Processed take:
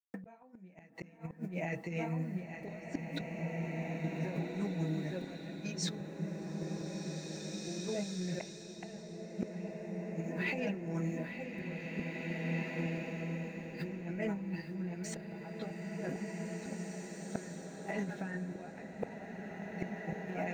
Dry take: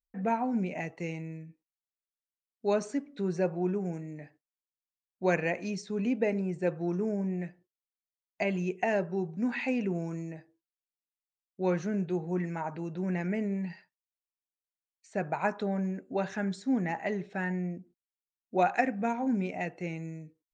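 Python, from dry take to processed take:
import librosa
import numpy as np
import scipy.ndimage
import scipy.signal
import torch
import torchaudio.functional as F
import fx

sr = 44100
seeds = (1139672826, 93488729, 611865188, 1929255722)

y = scipy.signal.sosfilt(scipy.signal.butter(4, 94.0, 'highpass', fs=sr, output='sos'), x)
y = y + 0.6 * np.pad(y, (int(6.1 * sr / 1000.0), 0))[:len(y)]
y = fx.quant_dither(y, sr, seeds[0], bits=12, dither='none')
y = fx.chorus_voices(y, sr, voices=4, hz=1.3, base_ms=14, depth_ms=3.0, mix_pct=40)
y = fx.echo_feedback(y, sr, ms=860, feedback_pct=18, wet_db=-12)
y = fx.gate_flip(y, sr, shuts_db=-28.0, range_db=-41)
y = fx.over_compress(y, sr, threshold_db=-49.0, ratio=-1.0)
y = fx.rev_bloom(y, sr, seeds[1], attack_ms=2250, drr_db=0.0)
y = y * 10.0 ** (10.0 / 20.0)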